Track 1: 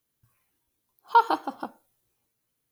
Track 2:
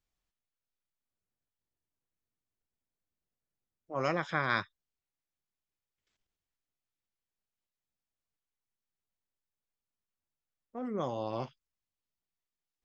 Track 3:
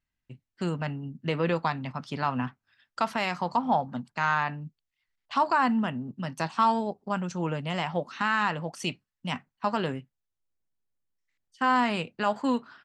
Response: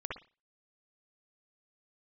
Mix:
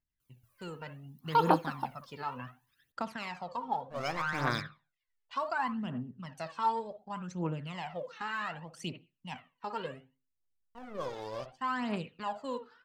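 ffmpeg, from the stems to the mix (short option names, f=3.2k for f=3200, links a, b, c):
-filter_complex "[0:a]adelay=200,volume=-4.5dB[a];[1:a]aeval=exprs='sgn(val(0))*max(abs(val(0))-0.00668,0)':c=same,adynamicequalizer=threshold=0.00158:dfrequency=4900:dqfactor=1.2:tfrequency=4900:tqfactor=1.2:attack=5:release=100:ratio=0.375:range=3.5:mode=boostabove:tftype=bell,volume=-6.5dB,asplit=2[b][c];[c]volume=-8dB[d];[2:a]volume=-14dB,asplit=2[e][f];[f]volume=-9.5dB[g];[3:a]atrim=start_sample=2205[h];[d][g]amix=inputs=2:normalize=0[i];[i][h]afir=irnorm=-1:irlink=0[j];[a][b][e][j]amix=inputs=4:normalize=0,aphaser=in_gain=1:out_gain=1:delay=2.4:decay=0.66:speed=0.67:type=triangular"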